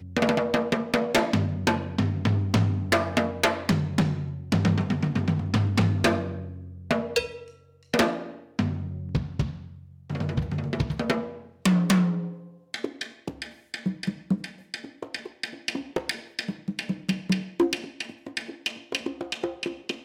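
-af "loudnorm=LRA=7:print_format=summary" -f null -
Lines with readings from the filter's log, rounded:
Input Integrated:    -27.7 LUFS
Input True Peak:     -12.7 dBTP
Input LRA:             7.2 LU
Input Threshold:     -37.9 LUFS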